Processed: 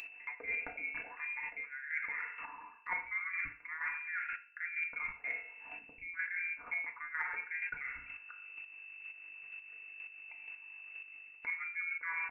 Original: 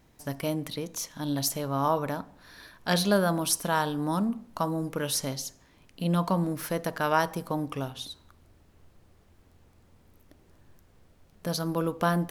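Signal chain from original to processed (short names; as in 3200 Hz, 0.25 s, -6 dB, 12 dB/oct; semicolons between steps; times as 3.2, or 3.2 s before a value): formant sharpening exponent 1.5; HPF 430 Hz 24 dB/oct; hum 50 Hz, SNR 30 dB; inverted band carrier 2700 Hz; FDN reverb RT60 0.64 s, low-frequency decay 0.7×, high-frequency decay 0.65×, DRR 1.5 dB; chopper 2.1 Hz, depth 60%, duty 15%; reverse; compressor 6:1, threshold -48 dBFS, peak gain reduction 26.5 dB; reverse; comb 4.2 ms, depth 49%; upward compressor, threshold -54 dBFS; gain +10 dB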